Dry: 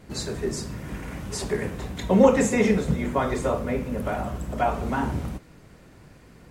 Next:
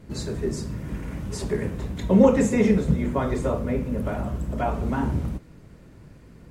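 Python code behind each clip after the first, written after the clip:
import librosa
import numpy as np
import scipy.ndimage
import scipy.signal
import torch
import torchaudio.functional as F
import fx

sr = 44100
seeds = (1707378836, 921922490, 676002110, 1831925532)

y = fx.low_shelf(x, sr, hz=460.0, db=8.5)
y = fx.notch(y, sr, hz=750.0, q=16.0)
y = y * librosa.db_to_amplitude(-4.5)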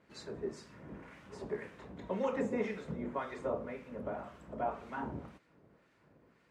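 y = fx.filter_lfo_bandpass(x, sr, shape='sine', hz=1.9, low_hz=580.0, high_hz=2200.0, q=0.7)
y = y * librosa.db_to_amplitude(-8.0)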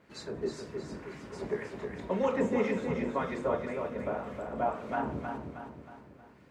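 y = fx.echo_feedback(x, sr, ms=315, feedback_pct=47, wet_db=-5.5)
y = y * librosa.db_to_amplitude(5.0)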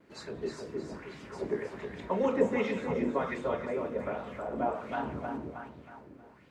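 y = fx.vibrato(x, sr, rate_hz=0.45, depth_cents=12.0)
y = fx.bell_lfo(y, sr, hz=1.3, low_hz=280.0, high_hz=3800.0, db=9)
y = y * librosa.db_to_amplitude(-2.0)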